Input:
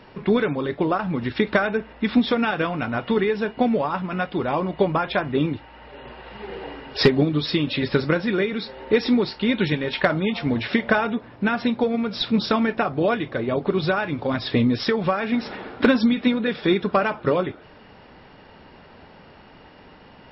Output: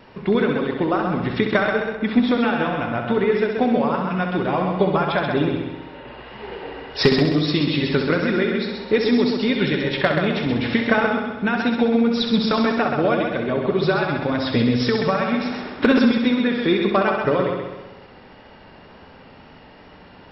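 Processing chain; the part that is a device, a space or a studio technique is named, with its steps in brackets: multi-head tape echo (multi-head delay 65 ms, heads first and second, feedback 54%, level -7 dB; wow and flutter 20 cents); 1.95–3.32 s: low-pass 3.1 kHz 6 dB/octave

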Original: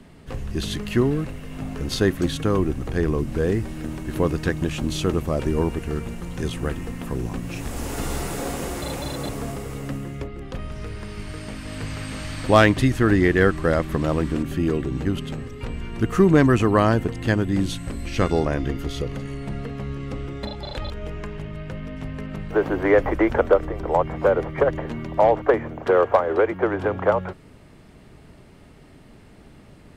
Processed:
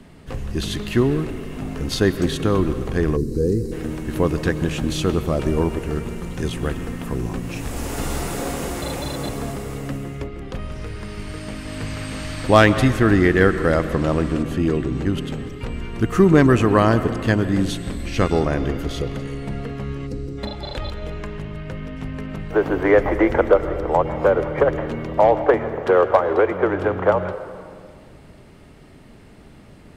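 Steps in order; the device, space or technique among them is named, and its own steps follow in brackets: 13.88–15.18 s: low-pass 11 kHz 12 dB/octave; 20.07–20.38 s: time-frequency box 530–3800 Hz -15 dB; filtered reverb send (on a send at -11 dB: high-pass 180 Hz + low-pass 4.6 kHz + reverberation RT60 2.0 s, pre-delay 101 ms); 3.16–3.72 s: on the sum: time-frequency box 530–3800 Hz -19 dB; trim +2 dB

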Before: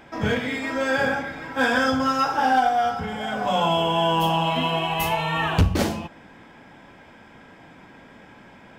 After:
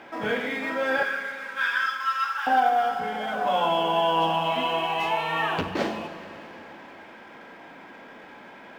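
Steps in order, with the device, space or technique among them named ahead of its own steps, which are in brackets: phone line with mismatched companding (band-pass 300–3400 Hz; companding laws mixed up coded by mu); 1.03–2.47 s: steep high-pass 1.1 kHz 48 dB/octave; Schroeder reverb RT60 3.7 s, combs from 33 ms, DRR 10 dB; trim -2 dB

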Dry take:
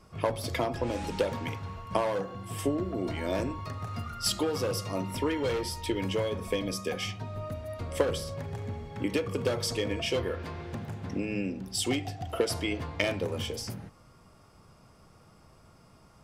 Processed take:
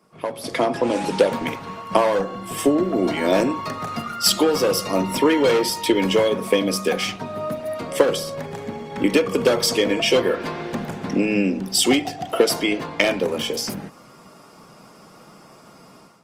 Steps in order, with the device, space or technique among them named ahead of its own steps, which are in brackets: video call (high-pass 170 Hz 24 dB/octave; level rider gain up to 13 dB; Opus 24 kbps 48 kHz)

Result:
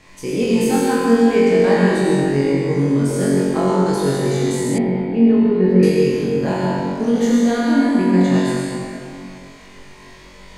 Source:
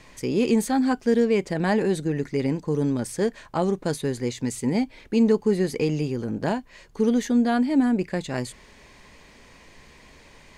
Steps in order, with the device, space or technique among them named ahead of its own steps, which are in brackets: tunnel (flutter echo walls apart 3.7 m, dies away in 0.66 s; reverberation RT60 2.4 s, pre-delay 71 ms, DRR -3 dB); 4.78–5.83 s: distance through air 460 m; trim -1 dB

